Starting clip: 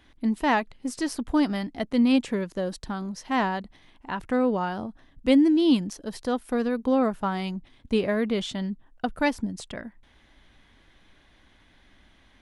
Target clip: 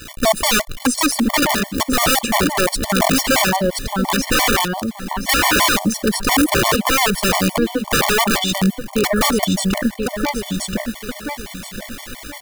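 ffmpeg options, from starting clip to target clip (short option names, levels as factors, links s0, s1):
-filter_complex "[0:a]asettb=1/sr,asplit=3[s0][s1][s2];[s0]atrim=end=2.634[s3];[s1]atrim=start=2.63:end=3.33,asetpts=PTS-STARTPTS,afade=t=in:d=0.004:c=qsin,afade=t=out:st=0.696:d=0.004:c=qsin,aeval=exprs='val(0)+0.5*0.00891*sgn(val(0))':c=same[s4];[s2]atrim=start=3.326[s5];[s3][s4]acrossfade=d=0.004:c1=hsin:c2=qsin[s6];[s6][s5]acrossfade=d=0.004:c1=qsin:c2=hsin,asplit=2[s7][s8];[s8]acompressor=threshold=0.0251:ratio=12,volume=1.26[s9];[s7][s9]amix=inputs=2:normalize=0,asettb=1/sr,asplit=3[s10][s11][s12];[s10]atrim=end=1.194[s13];[s11]atrim=start=1.19:end=1.97,asetpts=PTS-STARTPTS,afade=t=in:d=0.004:c=qsin,afade=t=out:st=0.776:d=0.004:c=qsin,bandreject=f=50:t=h:w=6,bandreject=f=100:t=h:w=6,bandreject=f=150:t=h:w=6,bandreject=f=200:t=h:w=6,bandreject=f=250:t=h:w=6,bandreject=f=300:t=h:w=6,bandreject=f=350:t=h:w=6,bandreject=f=400:t=h:w=6[s14];[s12]atrim=start=1.966[s15];[s13][s14]acrossfade=d=0.004:c1=hsin:c2=qsin[s16];[s16][s15]acrossfade=d=0.004:c1=qsin:c2=hsin,acrusher=bits=7:mix=0:aa=0.000001,highshelf=f=6900:g=6,asplit=2[s17][s18];[s18]aecho=0:1:1025|2050|3075:0.422|0.118|0.0331[s19];[s17][s19]amix=inputs=2:normalize=0,aeval=exprs='(mod(7.94*val(0)+1,2)-1)/7.94':c=same,asettb=1/sr,asplit=3[s20][s21][s22];[s20]atrim=end=4.654[s23];[s21]atrim=start=4.65:end=5.29,asetpts=PTS-STARTPTS,afade=t=in:d=0.004:c=qsin,afade=t=out:st=0.636:d=0.004:c=qsin,acrossover=split=1000|2600[s24][s25][s26];[s24]acompressor=threshold=0.0178:ratio=4[s27];[s25]acompressor=threshold=0.00708:ratio=4[s28];[s26]acompressor=threshold=0.00794:ratio=4[s29];[s27][s28][s29]amix=inputs=3:normalize=0[s30];[s22]atrim=start=5.286[s31];[s23][s30]acrossfade=d=0.004:c1=hsin:c2=qsin[s32];[s32][s31]acrossfade=d=0.004:c1=qsin:c2=hsin,alimiter=level_in=14.1:limit=0.891:release=50:level=0:latency=1,afftfilt=real='re*gt(sin(2*PI*5.8*pts/sr)*(1-2*mod(floor(b*sr/1024/590),2)),0)':imag='im*gt(sin(2*PI*5.8*pts/sr)*(1-2*mod(floor(b*sr/1024/590),2)),0)':win_size=1024:overlap=0.75,volume=0.473"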